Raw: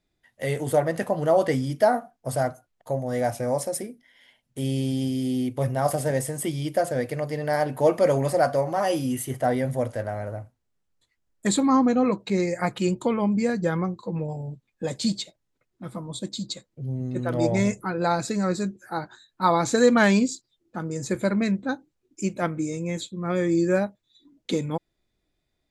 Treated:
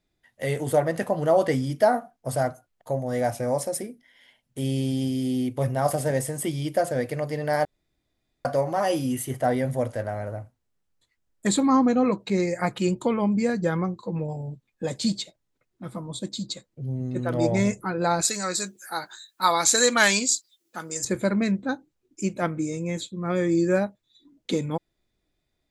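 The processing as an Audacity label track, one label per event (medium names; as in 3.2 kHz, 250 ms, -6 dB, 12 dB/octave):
7.650000	8.450000	room tone
18.210000	21.050000	tilt EQ +4.5 dB/octave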